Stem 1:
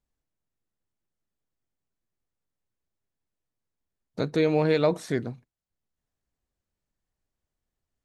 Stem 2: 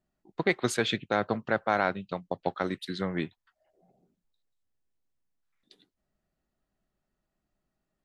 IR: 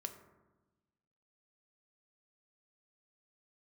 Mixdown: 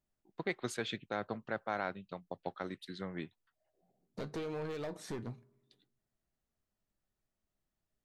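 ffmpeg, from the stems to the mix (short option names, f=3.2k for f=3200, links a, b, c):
-filter_complex "[0:a]acompressor=threshold=-27dB:ratio=20,asoftclip=type=hard:threshold=-30dB,flanger=delay=8.5:depth=1.3:regen=69:speed=1.1:shape=triangular,volume=-2dB,asplit=2[a][b];[b]volume=-14dB[c];[1:a]volume=-10.5dB[d];[2:a]atrim=start_sample=2205[e];[c][e]afir=irnorm=-1:irlink=0[f];[a][d][f]amix=inputs=3:normalize=0"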